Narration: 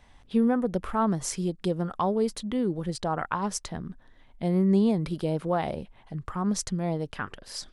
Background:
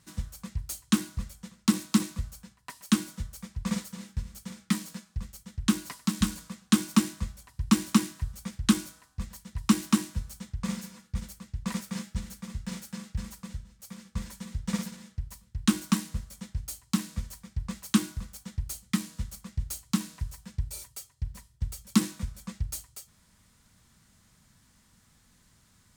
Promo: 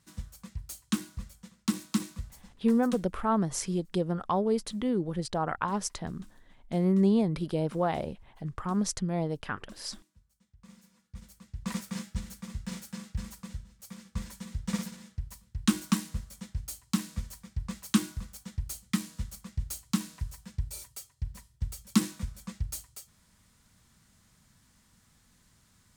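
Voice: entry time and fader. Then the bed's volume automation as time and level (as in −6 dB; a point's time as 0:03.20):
2.30 s, −1.5 dB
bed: 0:02.84 −5.5 dB
0:03.08 −29.5 dB
0:10.29 −29.5 dB
0:11.72 −1.5 dB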